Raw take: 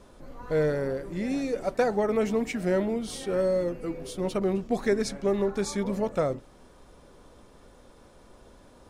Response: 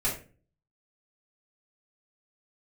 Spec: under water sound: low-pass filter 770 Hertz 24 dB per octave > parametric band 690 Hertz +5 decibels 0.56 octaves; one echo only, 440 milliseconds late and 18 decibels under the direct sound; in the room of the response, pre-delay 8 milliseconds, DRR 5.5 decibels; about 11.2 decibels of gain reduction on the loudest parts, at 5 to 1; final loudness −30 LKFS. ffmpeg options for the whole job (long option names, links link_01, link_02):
-filter_complex "[0:a]acompressor=threshold=-32dB:ratio=5,aecho=1:1:440:0.126,asplit=2[link_01][link_02];[1:a]atrim=start_sample=2205,adelay=8[link_03];[link_02][link_03]afir=irnorm=-1:irlink=0,volume=-13.5dB[link_04];[link_01][link_04]amix=inputs=2:normalize=0,lowpass=frequency=770:width=0.5412,lowpass=frequency=770:width=1.3066,equalizer=frequency=690:width_type=o:width=0.56:gain=5,volume=4dB"